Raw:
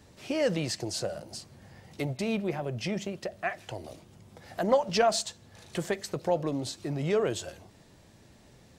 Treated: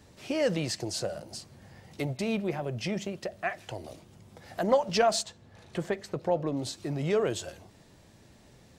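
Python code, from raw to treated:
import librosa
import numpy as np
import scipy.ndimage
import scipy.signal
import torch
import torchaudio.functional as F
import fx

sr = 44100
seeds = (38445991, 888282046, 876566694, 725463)

y = fx.high_shelf(x, sr, hz=3900.0, db=-11.5, at=(5.23, 6.57))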